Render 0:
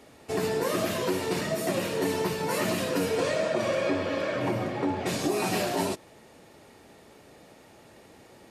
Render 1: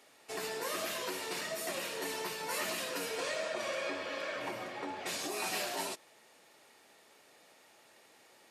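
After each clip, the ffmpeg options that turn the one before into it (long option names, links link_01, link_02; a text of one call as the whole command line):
ffmpeg -i in.wav -af "highpass=frequency=1300:poles=1,volume=-3dB" out.wav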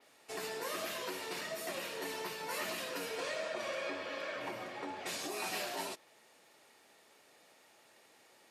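ffmpeg -i in.wav -af "adynamicequalizer=threshold=0.002:dfrequency=8400:dqfactor=0.88:tfrequency=8400:tqfactor=0.88:attack=5:release=100:ratio=0.375:range=2:mode=cutabove:tftype=bell,volume=-2dB" out.wav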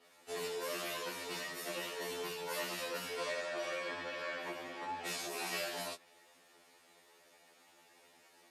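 ffmpeg -i in.wav -af "afftfilt=real='re*2*eq(mod(b,4),0)':imag='im*2*eq(mod(b,4),0)':win_size=2048:overlap=0.75,volume=2dB" out.wav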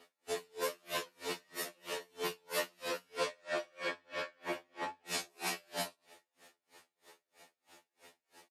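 ffmpeg -i in.wav -filter_complex "[0:a]asplit=2[link_01][link_02];[link_02]adelay=105,volume=-14dB,highshelf=frequency=4000:gain=-2.36[link_03];[link_01][link_03]amix=inputs=2:normalize=0,aeval=exprs='val(0)*pow(10,-36*(0.5-0.5*cos(2*PI*3.1*n/s))/20)':channel_layout=same,volume=6.5dB" out.wav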